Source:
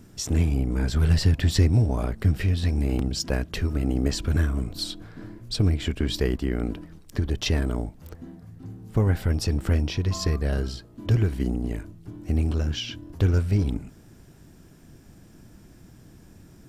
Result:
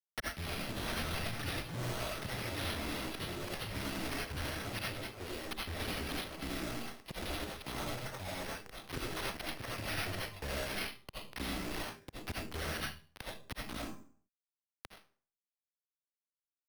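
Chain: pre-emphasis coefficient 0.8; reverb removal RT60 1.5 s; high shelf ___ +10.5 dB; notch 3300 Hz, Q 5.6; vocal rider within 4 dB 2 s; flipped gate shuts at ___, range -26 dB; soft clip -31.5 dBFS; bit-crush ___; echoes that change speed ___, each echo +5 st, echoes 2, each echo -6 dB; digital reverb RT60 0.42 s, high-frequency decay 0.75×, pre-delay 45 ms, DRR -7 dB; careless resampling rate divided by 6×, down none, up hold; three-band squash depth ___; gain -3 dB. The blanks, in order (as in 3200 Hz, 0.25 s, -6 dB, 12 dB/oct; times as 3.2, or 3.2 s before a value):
5500 Hz, -24 dBFS, 7-bit, 0.388 s, 70%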